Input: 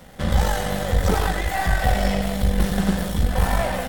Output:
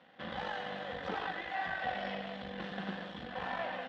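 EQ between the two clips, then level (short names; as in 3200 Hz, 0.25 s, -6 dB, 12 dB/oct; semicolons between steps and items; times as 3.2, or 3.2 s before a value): speaker cabinet 390–3200 Hz, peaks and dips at 410 Hz -9 dB, 600 Hz -7 dB, 890 Hz -5 dB, 1300 Hz -5 dB, 2200 Hz -6 dB; -7.5 dB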